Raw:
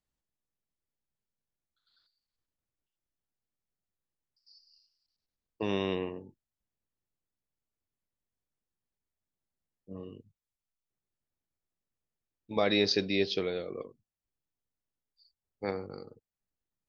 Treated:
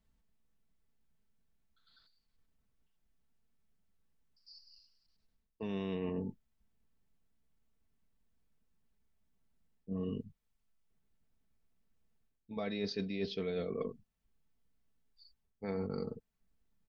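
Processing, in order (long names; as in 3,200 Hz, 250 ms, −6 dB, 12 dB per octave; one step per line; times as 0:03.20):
bass and treble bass +9 dB, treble −6 dB
comb filter 4.5 ms, depth 52%
reversed playback
downward compressor 16 to 1, threshold −39 dBFS, peak gain reduction 21.5 dB
reversed playback
level +5.5 dB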